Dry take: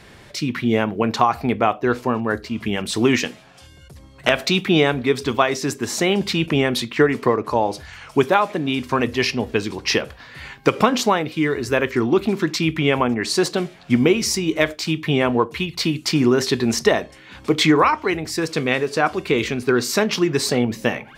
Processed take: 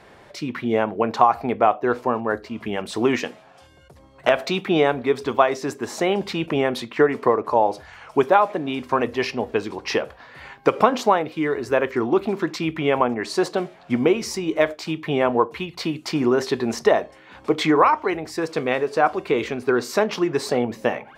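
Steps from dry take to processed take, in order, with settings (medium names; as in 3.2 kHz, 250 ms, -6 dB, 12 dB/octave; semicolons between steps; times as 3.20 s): peaking EQ 720 Hz +12.5 dB 2.6 oct; trim -10 dB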